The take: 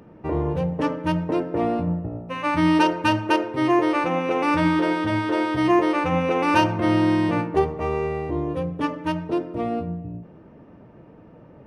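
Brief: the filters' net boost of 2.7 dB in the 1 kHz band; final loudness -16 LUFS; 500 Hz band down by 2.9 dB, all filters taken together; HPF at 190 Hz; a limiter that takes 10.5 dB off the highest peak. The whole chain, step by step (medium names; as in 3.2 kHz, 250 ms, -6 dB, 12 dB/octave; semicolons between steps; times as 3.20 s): high-pass 190 Hz; peaking EQ 500 Hz -5 dB; peaking EQ 1 kHz +4.5 dB; trim +10 dB; peak limiter -5.5 dBFS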